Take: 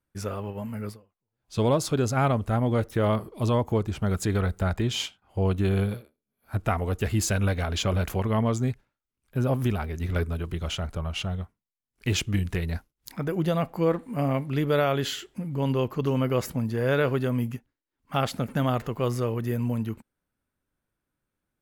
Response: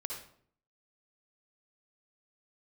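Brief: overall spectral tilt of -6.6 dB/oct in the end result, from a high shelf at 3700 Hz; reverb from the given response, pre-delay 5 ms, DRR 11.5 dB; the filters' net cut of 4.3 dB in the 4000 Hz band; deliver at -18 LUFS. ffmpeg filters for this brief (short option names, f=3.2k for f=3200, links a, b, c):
-filter_complex "[0:a]highshelf=f=3.7k:g=-4,equalizer=f=4k:t=o:g=-3.5,asplit=2[a][b];[1:a]atrim=start_sample=2205,adelay=5[c];[b][c]afir=irnorm=-1:irlink=0,volume=-11.5dB[d];[a][d]amix=inputs=2:normalize=0,volume=9.5dB"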